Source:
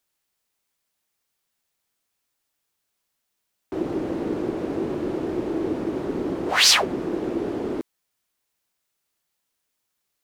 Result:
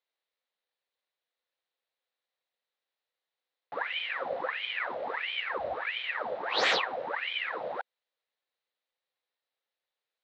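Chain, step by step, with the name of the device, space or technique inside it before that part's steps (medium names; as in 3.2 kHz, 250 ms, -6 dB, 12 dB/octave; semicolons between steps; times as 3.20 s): voice changer toy (ring modulator with a swept carrier 1.5 kHz, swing 85%, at 1.5 Hz; cabinet simulation 410–4100 Hz, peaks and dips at 510 Hz +10 dB, 760 Hz +3 dB, 1.9 kHz +4 dB, 3.9 kHz +7 dB); 5.48–6.09 s: resonant low shelf 110 Hz +11.5 dB, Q 1.5; trim -6.5 dB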